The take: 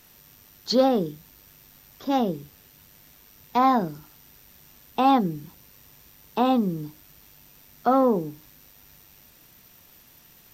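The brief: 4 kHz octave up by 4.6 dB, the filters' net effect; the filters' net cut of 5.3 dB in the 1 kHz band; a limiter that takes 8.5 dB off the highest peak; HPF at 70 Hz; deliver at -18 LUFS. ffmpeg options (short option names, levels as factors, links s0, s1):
-af "highpass=70,equalizer=f=1000:t=o:g=-7.5,equalizer=f=4000:t=o:g=5.5,volume=3.76,alimiter=limit=0.473:level=0:latency=1"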